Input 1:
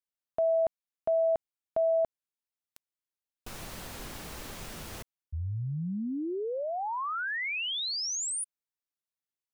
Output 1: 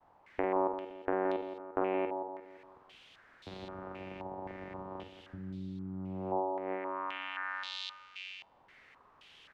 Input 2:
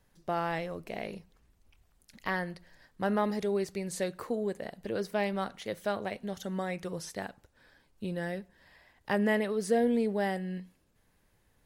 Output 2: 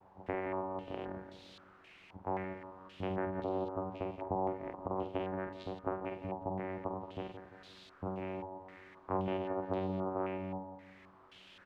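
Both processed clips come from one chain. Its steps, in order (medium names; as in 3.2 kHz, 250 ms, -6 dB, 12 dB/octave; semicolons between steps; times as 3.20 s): small resonant body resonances 380/660 Hz, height 12 dB, ringing for 25 ms; vocoder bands 4, saw 94.3 Hz; in parallel at -9 dB: word length cut 8-bit, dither triangular; on the sum: compression 2:1, threshold -45 dBFS; expander -58 dBFS; doubling 48 ms -7 dB; on a send: feedback delay 173 ms, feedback 48%, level -9.5 dB; on the sum: step-sequenced low-pass 3.8 Hz 880–3800 Hz; trim -2 dB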